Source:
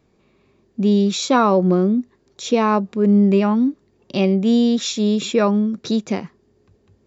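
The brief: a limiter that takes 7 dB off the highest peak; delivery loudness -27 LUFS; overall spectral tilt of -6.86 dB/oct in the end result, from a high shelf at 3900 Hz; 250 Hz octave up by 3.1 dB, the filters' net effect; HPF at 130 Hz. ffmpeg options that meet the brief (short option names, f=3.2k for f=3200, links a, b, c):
-af "highpass=130,equalizer=f=250:t=o:g=4.5,highshelf=f=3.9k:g=-3.5,volume=-9.5dB,alimiter=limit=-18dB:level=0:latency=1"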